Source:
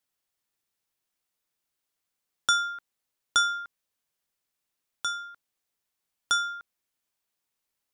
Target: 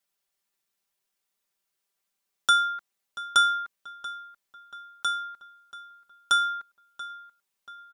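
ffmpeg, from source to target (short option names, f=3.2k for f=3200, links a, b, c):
-filter_complex "[0:a]lowshelf=f=270:g=-5,aecho=1:1:5.1:0.73,asplit=2[a][b];[b]adelay=684,lowpass=f=3.3k:p=1,volume=-15dB,asplit=2[c][d];[d]adelay=684,lowpass=f=3.3k:p=1,volume=0.5,asplit=2[e][f];[f]adelay=684,lowpass=f=3.3k:p=1,volume=0.5,asplit=2[g][h];[h]adelay=684,lowpass=f=3.3k:p=1,volume=0.5,asplit=2[i][j];[j]adelay=684,lowpass=f=3.3k:p=1,volume=0.5[k];[c][e][g][i][k]amix=inputs=5:normalize=0[l];[a][l]amix=inputs=2:normalize=0"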